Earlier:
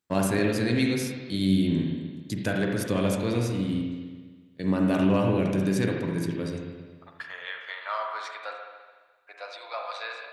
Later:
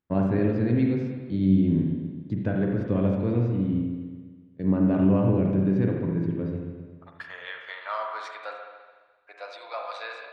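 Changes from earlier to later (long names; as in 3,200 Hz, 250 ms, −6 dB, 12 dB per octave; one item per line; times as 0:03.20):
first voice: add head-to-tape spacing loss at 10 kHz 42 dB
master: add spectral tilt −1.5 dB per octave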